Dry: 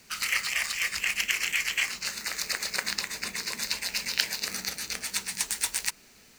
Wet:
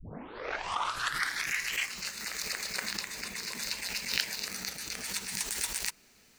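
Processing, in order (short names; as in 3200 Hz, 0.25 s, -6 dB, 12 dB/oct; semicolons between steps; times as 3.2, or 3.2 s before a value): tape start at the beginning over 1.75 s; backwards sustainer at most 75 dB/s; gain -5.5 dB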